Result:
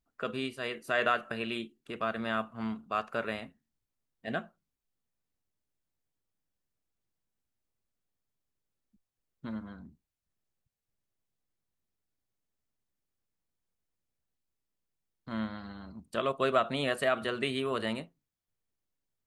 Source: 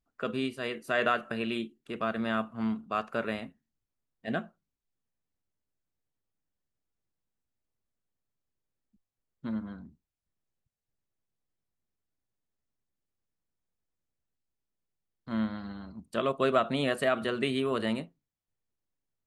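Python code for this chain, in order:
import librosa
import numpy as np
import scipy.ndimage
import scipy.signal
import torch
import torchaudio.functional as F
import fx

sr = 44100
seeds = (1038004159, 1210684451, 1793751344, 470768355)

y = fx.dynamic_eq(x, sr, hz=230.0, q=0.72, threshold_db=-44.0, ratio=4.0, max_db=-5)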